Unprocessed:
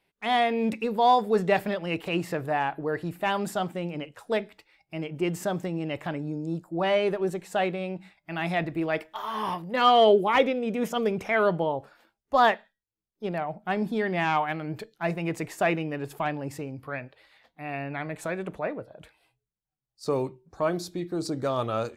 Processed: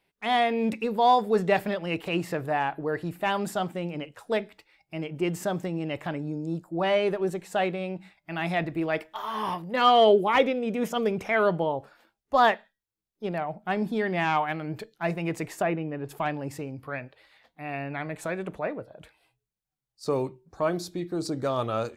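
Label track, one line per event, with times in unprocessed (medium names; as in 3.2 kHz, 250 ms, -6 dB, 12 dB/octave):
15.620000	16.090000	tape spacing loss at 10 kHz 31 dB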